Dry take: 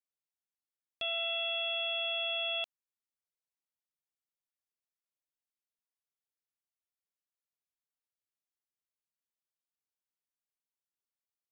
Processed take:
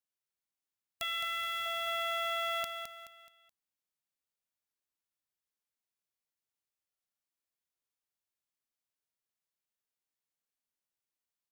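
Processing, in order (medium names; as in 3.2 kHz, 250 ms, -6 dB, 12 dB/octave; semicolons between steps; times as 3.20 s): formants flattened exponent 0.1; 1.03–1.66 s: peaking EQ 710 Hz -14.5 dB 0.74 oct; feedback delay 213 ms, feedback 38%, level -7 dB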